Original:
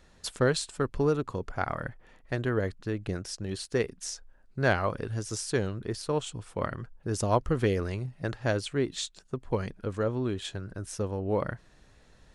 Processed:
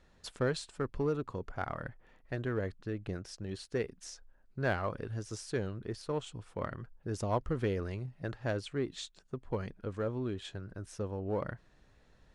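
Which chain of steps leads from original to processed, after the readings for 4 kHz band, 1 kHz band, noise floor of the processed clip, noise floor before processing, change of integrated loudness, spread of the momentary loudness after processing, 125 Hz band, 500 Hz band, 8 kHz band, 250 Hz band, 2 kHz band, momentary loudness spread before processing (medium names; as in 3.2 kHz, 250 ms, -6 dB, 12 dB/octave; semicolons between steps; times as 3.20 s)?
-8.5 dB, -6.5 dB, -65 dBFS, -59 dBFS, -6.0 dB, 10 LU, -6.0 dB, -6.0 dB, -11.0 dB, -6.0 dB, -7.0 dB, 11 LU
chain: low-pass 4 kHz 6 dB/octave; in parallel at -9 dB: hard clipper -25.5 dBFS, distortion -9 dB; on the sum: trim -8 dB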